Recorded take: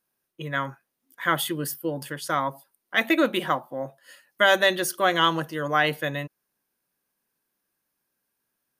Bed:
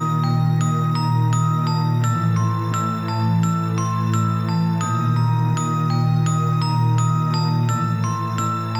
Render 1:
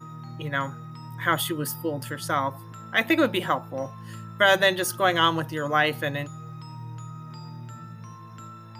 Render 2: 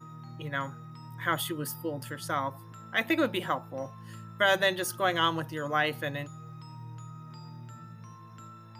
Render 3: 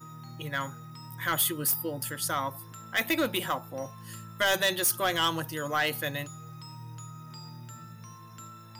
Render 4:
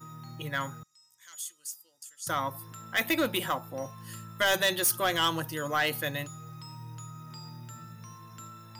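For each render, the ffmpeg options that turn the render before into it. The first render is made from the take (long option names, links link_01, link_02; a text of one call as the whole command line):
ffmpeg -i in.wav -i bed.wav -filter_complex "[1:a]volume=-20.5dB[link_01];[0:a][link_01]amix=inputs=2:normalize=0" out.wav
ffmpeg -i in.wav -af "volume=-5.5dB" out.wav
ffmpeg -i in.wav -af "crystalizer=i=3:c=0,asoftclip=type=tanh:threshold=-18.5dB" out.wav
ffmpeg -i in.wav -filter_complex "[0:a]asettb=1/sr,asplit=3[link_01][link_02][link_03];[link_01]atrim=end=0.834[link_04];[link_02]atrim=start=0.83:end=2.27,asetpts=PTS-STARTPTS,afade=type=in:duration=0.004:curve=qsin,afade=type=out:start_time=1.436:duration=0.004:curve=qsin,bandpass=frequency=6800:width_type=q:width=4.1[link_05];[link_03]atrim=start=2.266[link_06];[link_04][link_05]acrossfade=duration=0.004:curve1=hsin:curve2=qsin[link_07];[link_07][link_06]acrossfade=duration=0.004:curve1=qsin:curve2=hsin" out.wav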